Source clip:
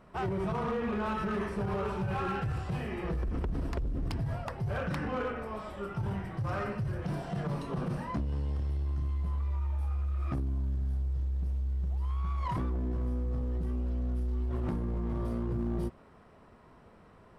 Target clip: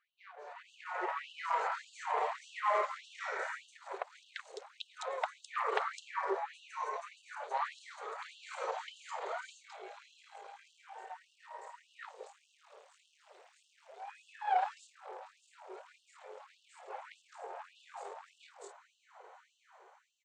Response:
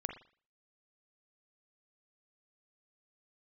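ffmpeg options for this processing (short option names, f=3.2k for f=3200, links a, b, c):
-filter_complex "[0:a]asetrate=39289,aresample=44100,atempo=1.12246,aresample=22050,aresample=44100,asetrate=37882,aresample=44100,dynaudnorm=f=230:g=7:m=15dB,acrossover=split=440|4300[a][b][c];[a]adelay=180[d];[c]adelay=210[e];[d][b][e]amix=inputs=3:normalize=0,afftfilt=real='re*gte(b*sr/1024,370*pow(2700/370,0.5+0.5*sin(2*PI*1.7*pts/sr)))':imag='im*gte(b*sr/1024,370*pow(2700/370,0.5+0.5*sin(2*PI*1.7*pts/sr)))':win_size=1024:overlap=0.75,volume=-7.5dB"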